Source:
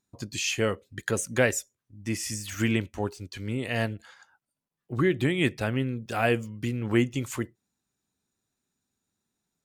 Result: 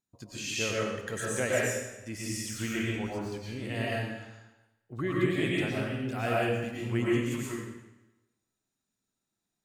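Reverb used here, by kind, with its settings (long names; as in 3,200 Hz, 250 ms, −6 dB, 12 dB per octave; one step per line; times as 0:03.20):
comb and all-pass reverb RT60 1 s, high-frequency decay 0.95×, pre-delay 75 ms, DRR −6 dB
level −9.5 dB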